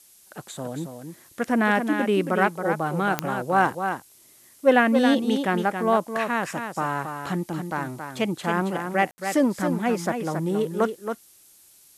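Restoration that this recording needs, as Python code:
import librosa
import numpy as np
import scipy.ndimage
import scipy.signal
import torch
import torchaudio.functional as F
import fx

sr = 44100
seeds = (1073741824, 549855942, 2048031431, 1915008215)

y = fx.fix_declick_ar(x, sr, threshold=10.0)
y = fx.fix_ambience(y, sr, seeds[0], print_start_s=11.32, print_end_s=11.82, start_s=9.11, end_s=9.18)
y = fx.noise_reduce(y, sr, print_start_s=11.32, print_end_s=11.82, reduce_db=15.0)
y = fx.fix_echo_inverse(y, sr, delay_ms=274, level_db=-7.0)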